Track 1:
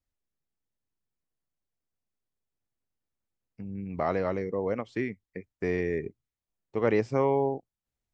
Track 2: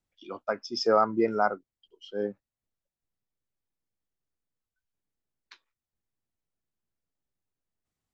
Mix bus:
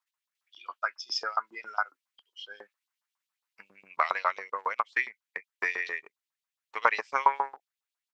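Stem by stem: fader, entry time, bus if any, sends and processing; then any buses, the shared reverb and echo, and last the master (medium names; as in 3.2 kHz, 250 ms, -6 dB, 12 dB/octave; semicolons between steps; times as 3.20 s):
+2.5 dB, 0.00 s, no send, peaking EQ 980 Hz +8 dB 0.54 oct; transient shaper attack +6 dB, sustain -10 dB
0.0 dB, 0.35 s, no send, compression 2.5:1, threshold -25 dBFS, peak gain reduction 6 dB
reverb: none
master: LFO high-pass saw up 7.3 Hz 990–4000 Hz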